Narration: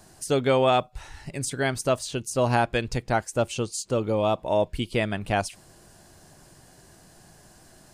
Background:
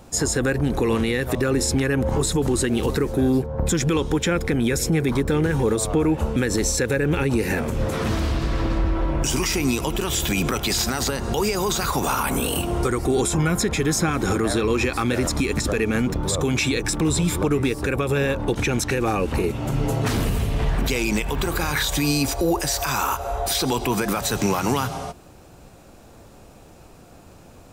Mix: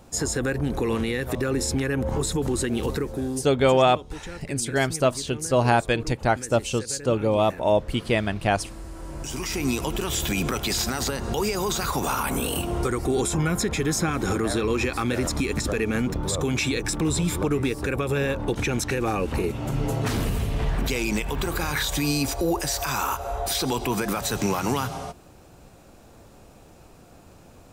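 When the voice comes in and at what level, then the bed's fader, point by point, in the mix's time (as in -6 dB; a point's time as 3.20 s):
3.15 s, +2.5 dB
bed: 2.92 s -4 dB
3.81 s -17.5 dB
8.89 s -17.5 dB
9.69 s -3 dB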